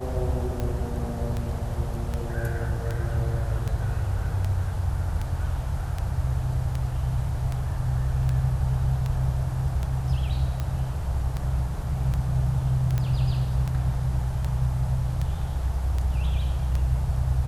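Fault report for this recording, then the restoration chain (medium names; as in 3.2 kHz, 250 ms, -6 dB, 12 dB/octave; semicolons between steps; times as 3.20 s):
tick 78 rpm -17 dBFS
12.98 s: pop -15 dBFS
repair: de-click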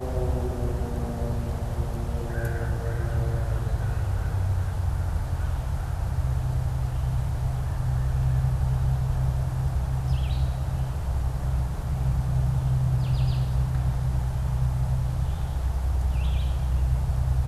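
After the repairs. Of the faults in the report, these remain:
nothing left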